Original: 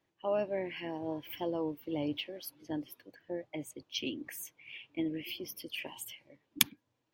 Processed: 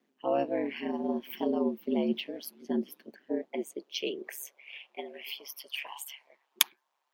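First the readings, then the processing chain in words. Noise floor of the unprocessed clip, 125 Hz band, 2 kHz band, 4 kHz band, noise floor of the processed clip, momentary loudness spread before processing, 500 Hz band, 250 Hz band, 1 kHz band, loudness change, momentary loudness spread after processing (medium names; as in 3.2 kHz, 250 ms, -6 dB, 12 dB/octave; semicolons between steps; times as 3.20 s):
-81 dBFS, no reading, +2.0 dB, +2.0 dB, -79 dBFS, 14 LU, +4.5 dB, +5.0 dB, +5.5 dB, +3.5 dB, 15 LU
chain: ring modulator 70 Hz; high-pass sweep 240 Hz -> 910 Hz, 3.11–5.40 s; trim +4.5 dB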